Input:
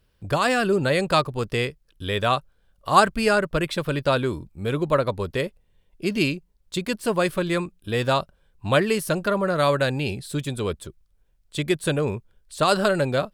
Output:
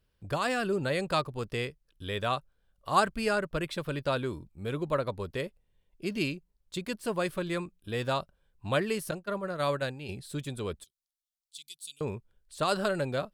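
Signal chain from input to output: 9.11–10.09 s: expander -18 dBFS; 10.84–12.01 s: inverse Chebyshev high-pass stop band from 1.8 kHz, stop band 40 dB; trim -8.5 dB

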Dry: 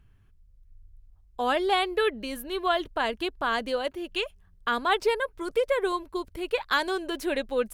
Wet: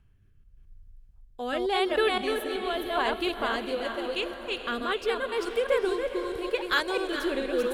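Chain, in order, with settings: chunks repeated in reverse 218 ms, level -3 dB; rotary cabinet horn 0.85 Hz; echo that smears into a reverb 464 ms, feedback 56%, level -10 dB

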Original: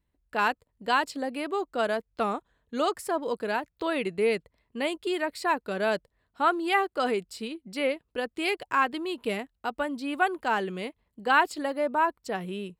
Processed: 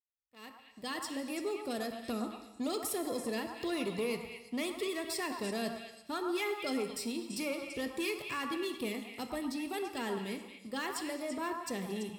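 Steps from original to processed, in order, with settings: fade-in on the opening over 2.45 s; high-pass 44 Hz; treble shelf 4.8 kHz +8.5 dB; de-hum 89.91 Hz, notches 3; wide varispeed 1.05×; level rider gain up to 14 dB; amplifier tone stack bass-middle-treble 10-0-1; compression 3:1, threshold -39 dBFS, peak gain reduction 6 dB; waveshaping leveller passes 2; comb of notches 1.5 kHz; on a send: repeats whose band climbs or falls 112 ms, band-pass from 1 kHz, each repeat 1.4 oct, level -2 dB; on the sum: gated-style reverb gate 410 ms falling, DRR 7.5 dB; trim +2 dB

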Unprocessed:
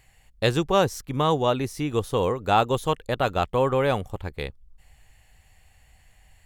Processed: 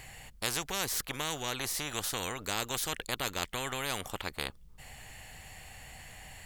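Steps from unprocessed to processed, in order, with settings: spectrum-flattening compressor 4:1; trim -5.5 dB

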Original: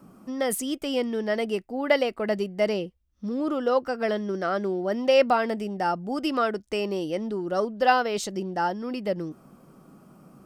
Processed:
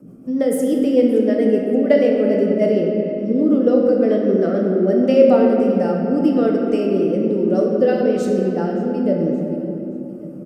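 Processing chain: graphic EQ 125/250/500/1000/4000 Hz +7/+10/+10/-8/-5 dB; feedback delay 572 ms, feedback 43%, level -21 dB; rotary cabinet horn 6.7 Hz, later 1.1 Hz, at 4.76 s; simulated room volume 150 m³, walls hard, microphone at 0.47 m; trim -1 dB

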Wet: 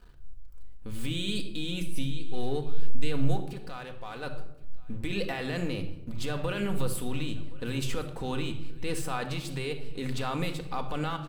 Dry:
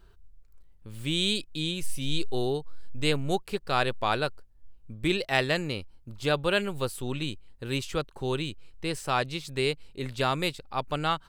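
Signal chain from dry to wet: dynamic bell 5.4 kHz, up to -5 dB, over -45 dBFS, Q 0.88; compressor with a negative ratio -30 dBFS, ratio -1; peak limiter -25 dBFS, peak gain reduction 9.5 dB; 3.37–4.23 s: level held to a coarse grid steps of 14 dB; crossover distortion -56 dBFS; delay 1070 ms -22.5 dB; simulated room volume 2600 m³, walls furnished, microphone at 1.9 m; trim +2 dB

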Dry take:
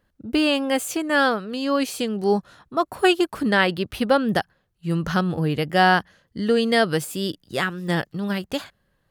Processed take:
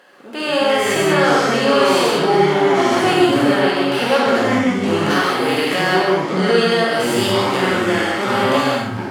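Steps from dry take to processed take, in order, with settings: spectral levelling over time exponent 0.6; high-pass 450 Hz 12 dB/octave; treble shelf 10 kHz -8 dB; harmonic-percussive split percussive -10 dB; 5.10–5.97 s: tilt EQ +2 dB/octave; in parallel at +2.5 dB: compression, threshold -33 dBFS, peak gain reduction 21 dB; on the sum: peak limiter -11 dBFS, peak gain reduction 11 dB; level rider gain up to 11.5 dB; ever faster or slower copies 130 ms, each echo -6 st, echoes 2; on a send: flutter echo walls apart 9.1 m, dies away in 0.29 s; on the sum: gated-style reverb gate 220 ms flat, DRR -4 dB; trim -8.5 dB

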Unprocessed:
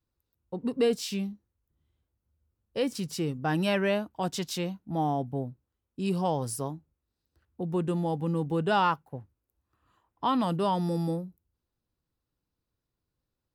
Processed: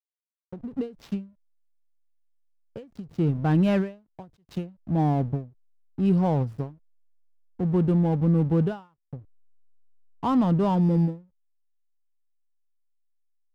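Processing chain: RIAA curve playback; hysteresis with a dead band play -34 dBFS; endings held to a fixed fall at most 180 dB/s

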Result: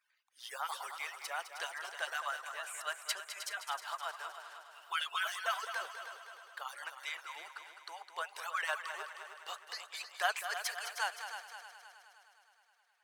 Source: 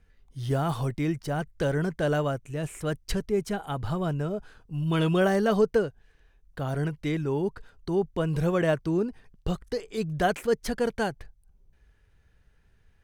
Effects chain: harmonic-percussive separation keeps percussive; high-pass 930 Hz 24 dB/octave; multi-head delay 104 ms, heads second and third, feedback 56%, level -10 dB

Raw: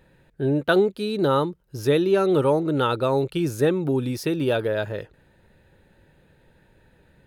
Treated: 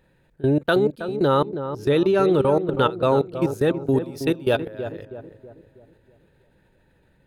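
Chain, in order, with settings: 1.23–3.42 s: treble shelf 9.1 kHz -9.5 dB; level held to a coarse grid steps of 22 dB; filtered feedback delay 322 ms, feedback 48%, low-pass 1.1 kHz, level -9 dB; trim +4.5 dB

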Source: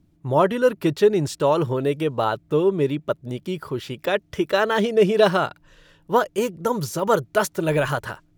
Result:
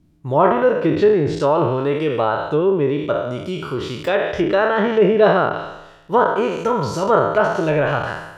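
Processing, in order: spectral sustain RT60 0.98 s; low-pass that closes with the level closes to 2 kHz, closed at -13.5 dBFS; trim +1 dB

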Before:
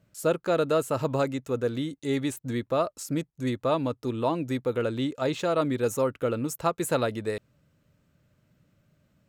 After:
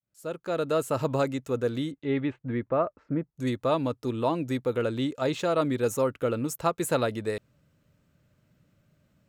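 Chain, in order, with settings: fade-in on the opening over 0.91 s; 1.90–3.36 s: low-pass 3.3 kHz -> 1.6 kHz 24 dB/octave

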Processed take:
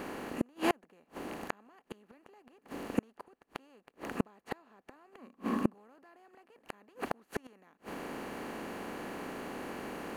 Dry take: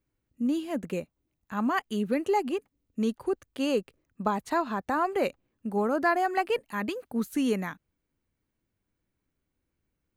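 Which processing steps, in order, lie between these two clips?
spectral levelling over time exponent 0.4; 5.18–5.74 s: small resonant body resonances 230/1100 Hz, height 15 dB; inverted gate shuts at -16 dBFS, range -39 dB; trim +1 dB

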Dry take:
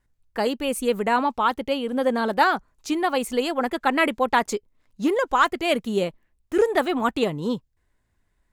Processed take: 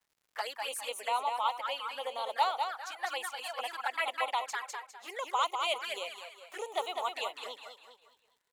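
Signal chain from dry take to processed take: feedback delay 202 ms, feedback 40%, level -5 dB; 2.49–5.08 s: tremolo triangle 1.9 Hz, depth 40%; touch-sensitive flanger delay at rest 10.6 ms, full sweep at -18 dBFS; high-pass 730 Hz 24 dB/octave; crackle 180 per s -56 dBFS; trim -4 dB

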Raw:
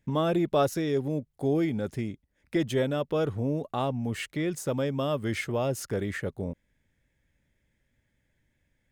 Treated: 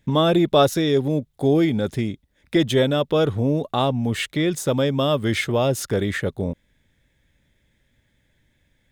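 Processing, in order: peaking EQ 3.6 kHz +8 dB 0.31 oct; trim +8 dB

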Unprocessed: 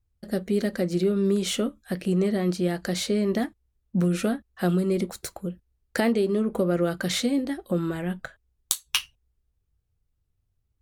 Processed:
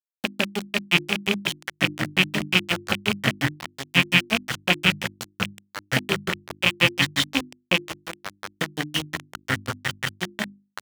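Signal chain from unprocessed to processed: rattle on loud lows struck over -29 dBFS, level -10 dBFS; ever faster or slower copies 517 ms, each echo -5 st, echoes 3, each echo -6 dB; in parallel at +0.5 dB: peak limiter -13.5 dBFS, peak gain reduction 7.5 dB; on the sum: granulator 113 ms, grains 5.6 per s; graphic EQ with 31 bands 400 Hz -8 dB, 3.15 kHz +11 dB, 10 kHz -5 dB; feedback delay 155 ms, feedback 34%, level -17 dB; on a send at -11.5 dB: reverberation RT60 0.45 s, pre-delay 3 ms; on the sum: small samples zeroed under -21.5 dBFS; high-pass 85 Hz; treble shelf 11 kHz -5.5 dB; hum notches 50/100/150/200/250/300/350 Hz; trim -1 dB

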